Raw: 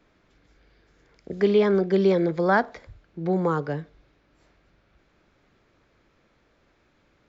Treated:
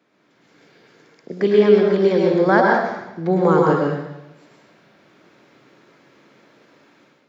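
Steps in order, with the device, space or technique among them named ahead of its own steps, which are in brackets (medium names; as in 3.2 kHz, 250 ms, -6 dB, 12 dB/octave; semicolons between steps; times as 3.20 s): far laptop microphone (reverberation RT60 0.90 s, pre-delay 100 ms, DRR -1 dB; high-pass 150 Hz 24 dB/octave; level rider gain up to 9.5 dB); trim -1 dB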